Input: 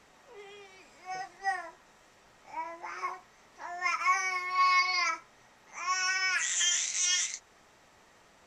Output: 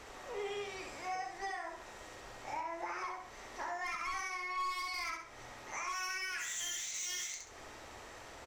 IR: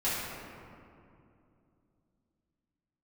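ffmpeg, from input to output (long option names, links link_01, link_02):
-filter_complex "[0:a]equalizer=frequency=180:width_type=o:width=0.67:gain=-14,asoftclip=type=tanh:threshold=-28dB,acompressor=threshold=-47dB:ratio=10,lowshelf=frequency=480:gain=6,asplit=2[link_01][link_02];[link_02]aecho=0:1:66|132|198|264:0.596|0.185|0.0572|0.0177[link_03];[link_01][link_03]amix=inputs=2:normalize=0,volume=7dB"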